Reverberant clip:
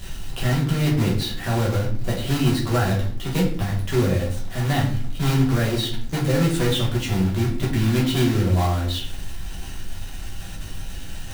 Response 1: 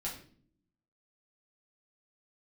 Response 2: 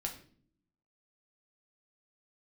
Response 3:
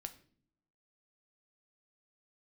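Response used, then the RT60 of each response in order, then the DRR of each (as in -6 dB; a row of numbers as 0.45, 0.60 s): 1; 0.50 s, 0.55 s, not exponential; -5.5, 1.0, 7.5 dB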